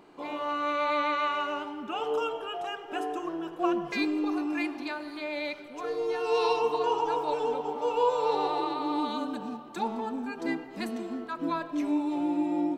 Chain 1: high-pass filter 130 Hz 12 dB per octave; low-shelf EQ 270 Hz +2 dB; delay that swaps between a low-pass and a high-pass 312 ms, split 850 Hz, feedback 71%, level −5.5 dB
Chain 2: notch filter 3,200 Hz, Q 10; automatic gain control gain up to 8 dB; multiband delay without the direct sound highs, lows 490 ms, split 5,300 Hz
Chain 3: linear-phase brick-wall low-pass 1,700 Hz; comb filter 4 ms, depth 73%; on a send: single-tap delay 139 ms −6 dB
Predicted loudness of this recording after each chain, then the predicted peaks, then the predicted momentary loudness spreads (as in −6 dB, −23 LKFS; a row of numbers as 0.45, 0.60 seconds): −28.5, −22.5, −27.5 LKFS; −13.5, −6.5, −11.5 dBFS; 8, 9, 10 LU